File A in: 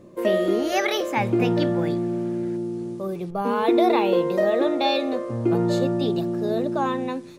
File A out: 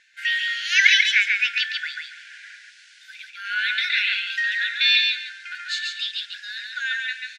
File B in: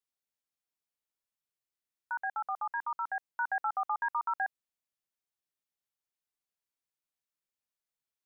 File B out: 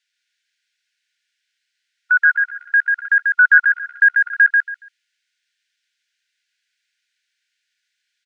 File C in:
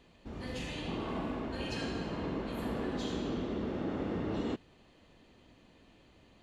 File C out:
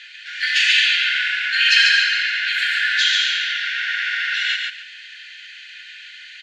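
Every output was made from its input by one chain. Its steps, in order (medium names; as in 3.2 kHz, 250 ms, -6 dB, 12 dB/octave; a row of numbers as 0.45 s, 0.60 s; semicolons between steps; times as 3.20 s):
brick-wall FIR high-pass 1.4 kHz; distance through air 130 m; on a send: feedback delay 140 ms, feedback 20%, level -3.5 dB; on the sum: peak normalisation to -1.5 dBFS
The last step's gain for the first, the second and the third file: +14.0 dB, +25.0 dB, +31.0 dB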